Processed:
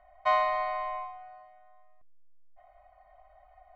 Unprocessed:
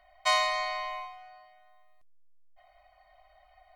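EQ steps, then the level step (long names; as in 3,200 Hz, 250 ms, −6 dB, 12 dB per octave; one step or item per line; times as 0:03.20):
low-pass filter 1,300 Hz 12 dB per octave
+3.5 dB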